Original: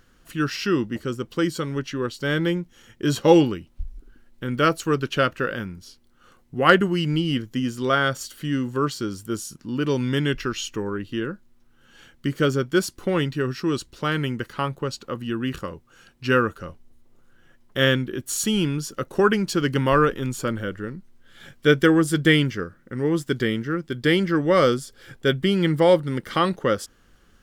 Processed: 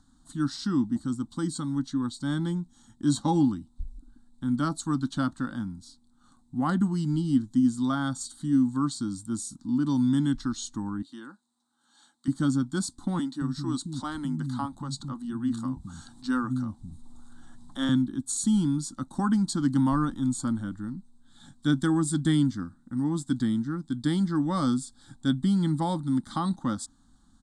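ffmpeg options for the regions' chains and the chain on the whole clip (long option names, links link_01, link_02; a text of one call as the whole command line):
ffmpeg -i in.wav -filter_complex "[0:a]asettb=1/sr,asplit=3[link_01][link_02][link_03];[link_01]atrim=end=11.024[link_04];[link_02]atrim=start=11.02:end=12.28,asetpts=PTS-STARTPTS,afade=type=in:duration=0.004:curve=qsin,afade=type=out:start_time=1.256:duration=0.004:curve=qsin,highpass=520,equalizer=frequency=4000:width=5.4:gain=3.5[link_05];[link_03]atrim=start=12.276[link_06];[link_04][link_05]acrossfade=duration=0.004:curve1=hsin:curve2=qsin[link_07];[link_07][link_06]acrossfade=duration=0.004:curve1=qsin:curve2=hsin,asettb=1/sr,asplit=3[link_08][link_09][link_10];[link_08]atrim=end=13.194[link_11];[link_09]atrim=start=13.19:end=17.89,asetpts=PTS-STARTPTS,afade=type=in:duration=0.004:curve=qsin,afade=type=out:start_time=4.696:duration=0.004:curve=qsin,acompressor=mode=upward:threshold=-28dB:ratio=2.5:attack=3.2:release=140:knee=2.83:detection=peak,acrossover=split=230[link_12][link_13];[link_12]adelay=220[link_14];[link_14][link_13]amix=inputs=2:normalize=0,atrim=end_sample=207270[link_15];[link_10]atrim=start=17.886[link_16];[link_11][link_15]acrossfade=duration=0.004:curve1=hsin:curve2=qsin[link_17];[link_17][link_16]acrossfade=duration=0.004:curve1=qsin:curve2=hsin,firequalizer=gain_entry='entry(150,0);entry(270,9);entry(420,-25);entry(810,3);entry(2600,-28);entry(3700,4);entry(5500,-5);entry(8300,9);entry(14000,-28)':delay=0.05:min_phase=1,acrossover=split=430[link_18][link_19];[link_19]acompressor=threshold=-23dB:ratio=6[link_20];[link_18][link_20]amix=inputs=2:normalize=0,volume=-4dB" out.wav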